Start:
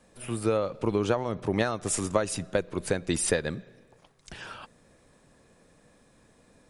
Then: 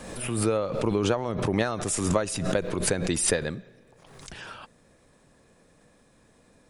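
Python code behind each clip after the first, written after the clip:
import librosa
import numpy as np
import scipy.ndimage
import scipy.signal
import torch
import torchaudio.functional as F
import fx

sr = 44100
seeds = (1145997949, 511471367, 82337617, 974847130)

y = fx.pre_swell(x, sr, db_per_s=46.0)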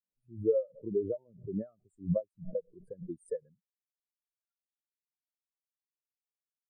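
y = fx.wow_flutter(x, sr, seeds[0], rate_hz=2.1, depth_cents=22.0)
y = fx.spectral_expand(y, sr, expansion=4.0)
y = y * librosa.db_to_amplitude(-9.0)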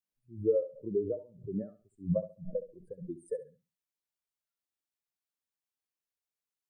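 y = fx.echo_feedback(x, sr, ms=68, feedback_pct=24, wet_db=-13)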